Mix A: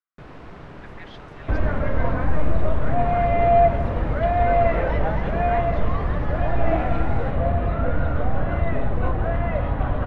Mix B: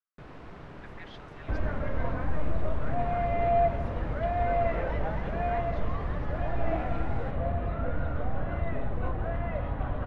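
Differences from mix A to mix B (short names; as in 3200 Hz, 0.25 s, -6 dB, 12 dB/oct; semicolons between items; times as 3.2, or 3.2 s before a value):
speech -4.0 dB; first sound -5.0 dB; second sound -8.5 dB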